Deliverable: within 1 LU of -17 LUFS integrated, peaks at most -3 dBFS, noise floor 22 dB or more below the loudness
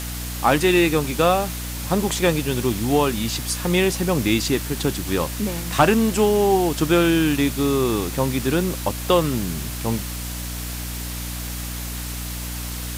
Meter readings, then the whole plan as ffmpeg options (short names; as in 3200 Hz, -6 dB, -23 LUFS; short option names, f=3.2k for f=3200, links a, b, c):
hum 60 Hz; harmonics up to 300 Hz; hum level -28 dBFS; noise floor -30 dBFS; noise floor target -44 dBFS; loudness -21.5 LUFS; peak -4.5 dBFS; loudness target -17.0 LUFS
-> -af "bandreject=f=60:t=h:w=4,bandreject=f=120:t=h:w=4,bandreject=f=180:t=h:w=4,bandreject=f=240:t=h:w=4,bandreject=f=300:t=h:w=4"
-af "afftdn=nr=14:nf=-30"
-af "volume=4.5dB,alimiter=limit=-3dB:level=0:latency=1"